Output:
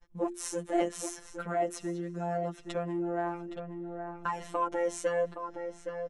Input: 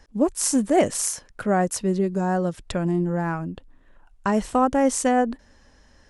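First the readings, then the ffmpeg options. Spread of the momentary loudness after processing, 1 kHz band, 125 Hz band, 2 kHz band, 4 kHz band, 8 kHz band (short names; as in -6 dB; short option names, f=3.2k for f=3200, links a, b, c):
9 LU, -9.5 dB, -13.5 dB, -9.0 dB, -11.5 dB, -15.0 dB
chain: -filter_complex "[0:a]flanger=delay=6.7:depth=2.1:regen=0:speed=0.43:shape=sinusoidal,afftfilt=real='hypot(re,im)*cos(PI*b)':imag='0':win_size=1024:overlap=0.75,equalizer=f=10k:t=o:w=1.7:g=-9.5,asplit=2[a][b];[b]adelay=817,lowpass=f=2.5k:p=1,volume=-10dB,asplit=2[c][d];[d]adelay=817,lowpass=f=2.5k:p=1,volume=0.4,asplit=2[e][f];[f]adelay=817,lowpass=f=2.5k:p=1,volume=0.4,asplit=2[g][h];[h]adelay=817,lowpass=f=2.5k:p=1,volume=0.4[i];[a][c][e][g][i]amix=inputs=5:normalize=0,acrossover=split=260|3000[j][k][l];[j]acompressor=threshold=-56dB:ratio=2[m];[m][k][l]amix=inputs=3:normalize=0,bandreject=f=4.7k:w=7.8,agate=range=-33dB:threshold=-53dB:ratio=3:detection=peak,asplit=2[n][o];[o]acompressor=threshold=-43dB:ratio=6,volume=0dB[p];[n][p]amix=inputs=2:normalize=0,asoftclip=type=tanh:threshold=-13dB,bandreject=f=50:t=h:w=6,bandreject=f=100:t=h:w=6,bandreject=f=150:t=h:w=6,bandreject=f=200:t=h:w=6,bandreject=f=250:t=h:w=6,bandreject=f=300:t=h:w=6,bandreject=f=350:t=h:w=6,volume=-2dB"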